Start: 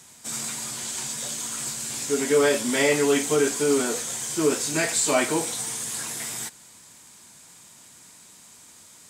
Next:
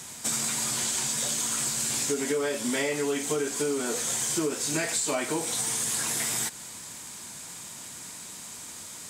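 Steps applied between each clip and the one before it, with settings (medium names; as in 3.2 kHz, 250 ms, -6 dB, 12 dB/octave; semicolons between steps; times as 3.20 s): compression 12:1, threshold -33 dBFS, peak gain reduction 18 dB; trim +8 dB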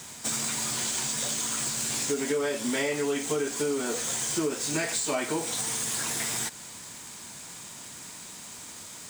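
median filter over 3 samples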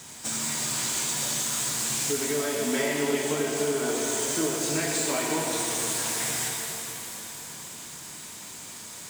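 pitch-shifted reverb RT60 3.5 s, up +7 st, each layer -8 dB, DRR -1 dB; trim -2 dB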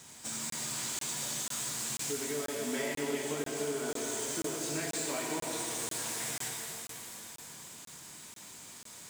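crackling interface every 0.49 s, samples 1024, zero, from 0.50 s; trim -8 dB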